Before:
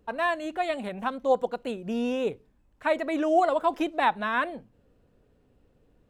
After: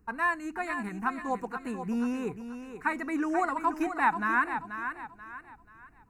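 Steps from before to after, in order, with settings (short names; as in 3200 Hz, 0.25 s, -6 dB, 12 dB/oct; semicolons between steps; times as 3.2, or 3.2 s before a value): fixed phaser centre 1400 Hz, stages 4; thinning echo 0.484 s, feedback 36%, high-pass 210 Hz, level -8.5 dB; gain +2 dB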